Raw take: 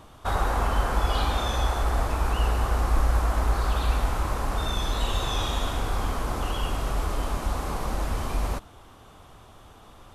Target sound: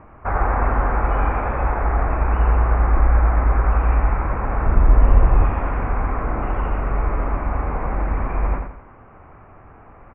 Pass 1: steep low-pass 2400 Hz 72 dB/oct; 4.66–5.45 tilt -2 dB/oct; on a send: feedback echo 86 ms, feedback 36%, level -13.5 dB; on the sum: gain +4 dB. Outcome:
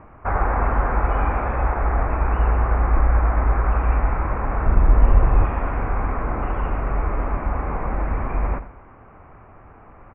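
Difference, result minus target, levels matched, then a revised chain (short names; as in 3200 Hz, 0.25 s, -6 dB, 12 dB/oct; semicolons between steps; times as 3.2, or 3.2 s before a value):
echo-to-direct -8 dB
steep low-pass 2400 Hz 72 dB/oct; 4.66–5.45 tilt -2 dB/oct; on a send: feedback echo 86 ms, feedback 36%, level -5.5 dB; on the sum: gain +4 dB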